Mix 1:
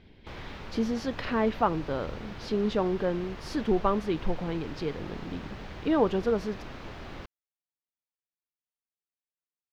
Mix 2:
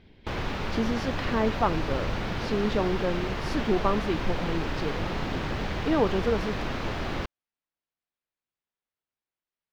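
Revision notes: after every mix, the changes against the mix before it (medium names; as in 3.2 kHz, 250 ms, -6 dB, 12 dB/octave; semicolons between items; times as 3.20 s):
background +11.0 dB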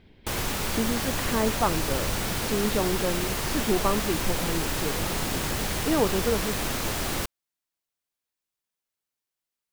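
background: remove distance through air 250 m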